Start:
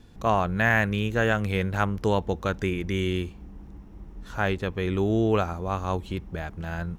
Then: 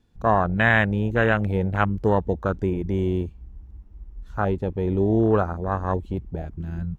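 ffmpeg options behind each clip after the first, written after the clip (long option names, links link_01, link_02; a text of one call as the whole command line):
ffmpeg -i in.wav -af "afwtdn=0.0447,volume=3.5dB" out.wav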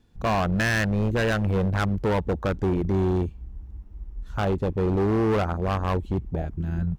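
ffmpeg -i in.wav -filter_complex "[0:a]asplit=2[link_01][link_02];[link_02]alimiter=limit=-14dB:level=0:latency=1:release=229,volume=-1dB[link_03];[link_01][link_03]amix=inputs=2:normalize=0,volume=17dB,asoftclip=hard,volume=-17dB,volume=-2.5dB" out.wav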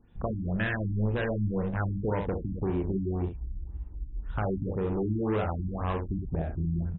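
ffmpeg -i in.wav -filter_complex "[0:a]acompressor=threshold=-28dB:ratio=6,asplit=2[link_01][link_02];[link_02]aecho=0:1:37|67:0.398|0.473[link_03];[link_01][link_03]amix=inputs=2:normalize=0,afftfilt=real='re*lt(b*sr/1024,310*pow(4000/310,0.5+0.5*sin(2*PI*1.9*pts/sr)))':imag='im*lt(b*sr/1024,310*pow(4000/310,0.5+0.5*sin(2*PI*1.9*pts/sr)))':win_size=1024:overlap=0.75" out.wav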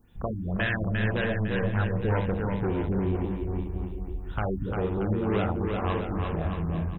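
ffmpeg -i in.wav -filter_complex "[0:a]crystalizer=i=3.5:c=0,asplit=2[link_01][link_02];[link_02]aecho=0:1:350|630|854|1033|1177:0.631|0.398|0.251|0.158|0.1[link_03];[link_01][link_03]amix=inputs=2:normalize=0" out.wav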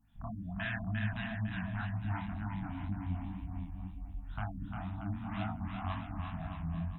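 ffmpeg -i in.wav -af "flanger=delay=18:depth=7.5:speed=2,afftfilt=real='re*(1-between(b*sr/4096,310,630))':imag='im*(1-between(b*sr/4096,310,630))':win_size=4096:overlap=0.75,volume=-6dB" -ar 48000 -c:a libopus -b:a 96k out.opus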